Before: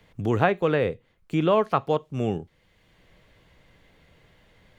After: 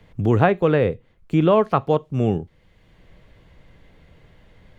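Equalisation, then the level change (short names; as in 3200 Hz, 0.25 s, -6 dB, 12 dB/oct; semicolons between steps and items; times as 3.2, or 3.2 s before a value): tilt -1.5 dB/oct; +3.0 dB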